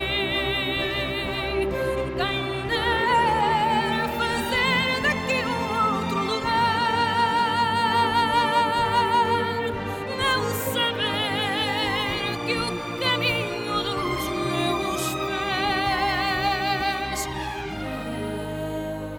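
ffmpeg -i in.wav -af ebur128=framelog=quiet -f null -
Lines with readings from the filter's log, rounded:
Integrated loudness:
  I:         -23.5 LUFS
  Threshold: -33.5 LUFS
Loudness range:
  LRA:         3.3 LU
  Threshold: -43.2 LUFS
  LRA low:   -24.9 LUFS
  LRA high:  -21.5 LUFS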